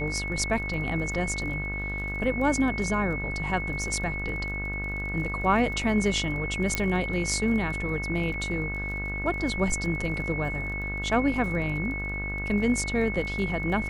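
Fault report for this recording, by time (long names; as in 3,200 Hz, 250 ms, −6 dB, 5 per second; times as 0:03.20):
mains buzz 50 Hz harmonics 33 −34 dBFS
surface crackle 24 per second −36 dBFS
whistle 2,200 Hz −32 dBFS
0:06.75: click −10 dBFS
0:08.34: drop-out 3.5 ms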